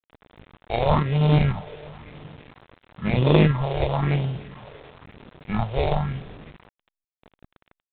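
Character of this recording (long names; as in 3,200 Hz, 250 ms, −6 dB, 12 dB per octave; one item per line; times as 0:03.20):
aliases and images of a low sample rate 1,500 Hz, jitter 0%
phaser sweep stages 4, 0.99 Hz, lowest notch 200–1,600 Hz
a quantiser's noise floor 8 bits, dither none
IMA ADPCM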